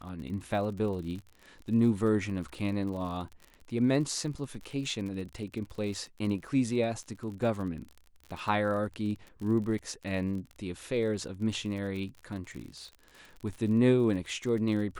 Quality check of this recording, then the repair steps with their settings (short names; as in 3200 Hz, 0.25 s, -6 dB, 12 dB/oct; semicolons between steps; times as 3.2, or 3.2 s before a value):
crackle 42/s -38 dBFS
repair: de-click